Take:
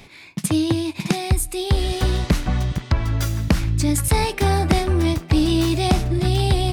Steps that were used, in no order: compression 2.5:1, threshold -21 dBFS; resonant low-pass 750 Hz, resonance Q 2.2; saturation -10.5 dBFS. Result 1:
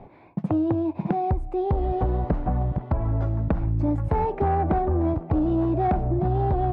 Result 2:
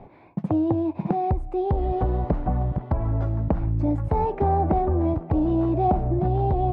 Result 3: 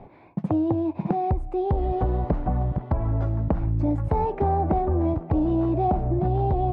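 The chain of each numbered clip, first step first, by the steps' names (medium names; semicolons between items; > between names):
resonant low-pass > saturation > compression; saturation > compression > resonant low-pass; saturation > resonant low-pass > compression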